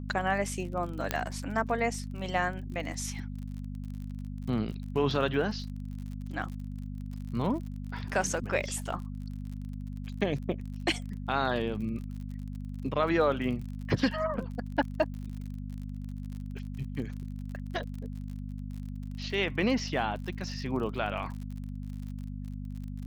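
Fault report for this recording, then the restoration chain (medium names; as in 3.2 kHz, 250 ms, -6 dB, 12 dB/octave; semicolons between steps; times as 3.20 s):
crackle 47 per s -39 dBFS
hum 50 Hz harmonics 5 -38 dBFS
1.11 s: pop -11 dBFS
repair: de-click; de-hum 50 Hz, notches 5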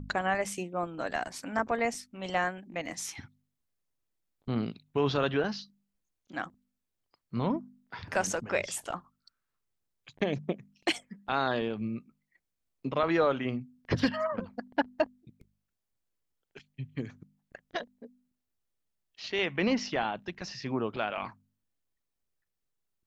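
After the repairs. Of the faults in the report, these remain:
nothing left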